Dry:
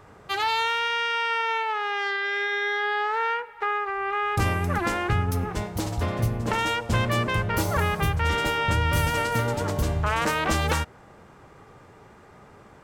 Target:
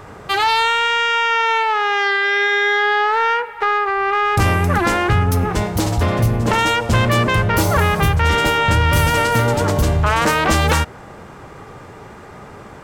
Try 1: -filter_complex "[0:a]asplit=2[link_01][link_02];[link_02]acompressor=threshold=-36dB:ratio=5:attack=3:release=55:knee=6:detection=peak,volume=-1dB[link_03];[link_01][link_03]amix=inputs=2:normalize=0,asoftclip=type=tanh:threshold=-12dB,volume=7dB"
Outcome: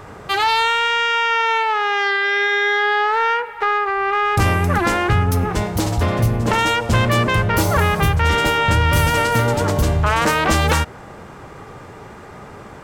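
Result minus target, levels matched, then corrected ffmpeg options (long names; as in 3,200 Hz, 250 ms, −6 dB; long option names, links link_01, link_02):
downward compressor: peak gain reduction +5 dB
-filter_complex "[0:a]asplit=2[link_01][link_02];[link_02]acompressor=threshold=-29.5dB:ratio=5:attack=3:release=55:knee=6:detection=peak,volume=-1dB[link_03];[link_01][link_03]amix=inputs=2:normalize=0,asoftclip=type=tanh:threshold=-12dB,volume=7dB"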